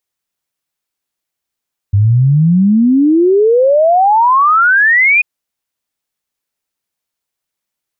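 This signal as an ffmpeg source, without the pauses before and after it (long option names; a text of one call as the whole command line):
ffmpeg -f lavfi -i "aevalsrc='0.501*clip(min(t,3.29-t)/0.01,0,1)*sin(2*PI*97*3.29/log(2500/97)*(exp(log(2500/97)*t/3.29)-1))':duration=3.29:sample_rate=44100" out.wav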